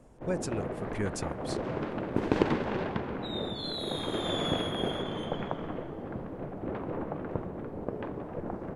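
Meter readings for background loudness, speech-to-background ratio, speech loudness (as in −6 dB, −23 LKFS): −34.0 LKFS, −3.5 dB, −37.5 LKFS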